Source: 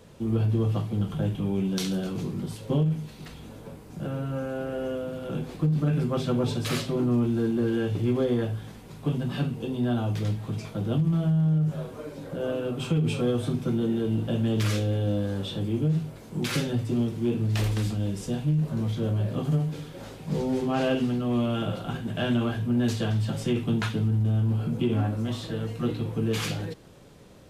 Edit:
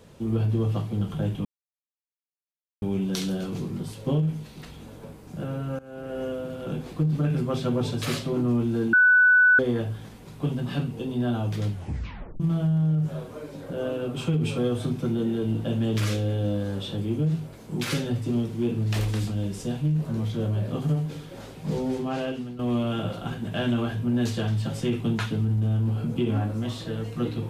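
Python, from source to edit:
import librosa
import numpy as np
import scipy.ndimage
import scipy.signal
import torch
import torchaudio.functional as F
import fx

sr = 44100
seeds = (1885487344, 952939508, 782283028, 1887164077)

y = fx.edit(x, sr, fx.insert_silence(at_s=1.45, length_s=1.37),
    fx.fade_in_from(start_s=4.42, length_s=0.43, floor_db=-20.5),
    fx.bleep(start_s=7.56, length_s=0.66, hz=1490.0, db=-13.5),
    fx.tape_stop(start_s=10.32, length_s=0.71),
    fx.fade_out_to(start_s=20.42, length_s=0.8, floor_db=-12.0), tone=tone)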